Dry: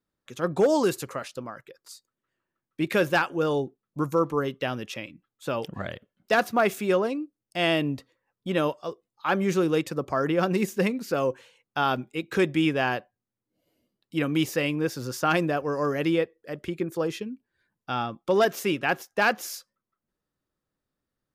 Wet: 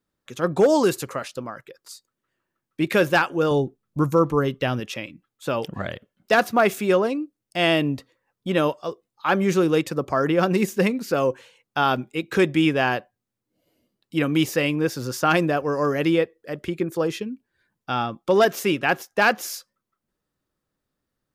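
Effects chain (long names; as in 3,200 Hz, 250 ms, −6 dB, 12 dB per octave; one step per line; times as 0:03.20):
0:03.51–0:04.80: low-shelf EQ 120 Hz +11.5 dB
level +4 dB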